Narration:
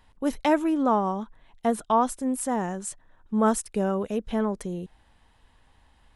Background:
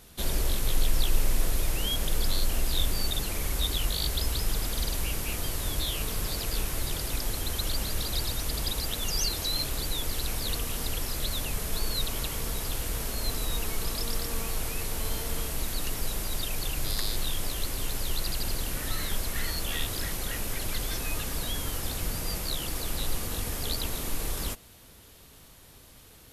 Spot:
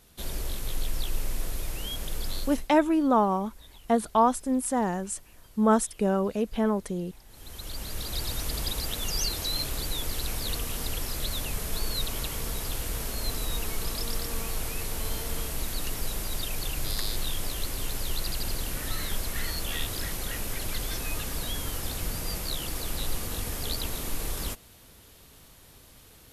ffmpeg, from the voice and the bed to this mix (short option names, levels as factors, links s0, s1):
-filter_complex "[0:a]adelay=2250,volume=1.06[s0];[1:a]volume=7.5,afade=t=out:st=2.39:d=0.29:silence=0.125893,afade=t=in:st=7.28:d=1.1:silence=0.0707946[s1];[s0][s1]amix=inputs=2:normalize=0"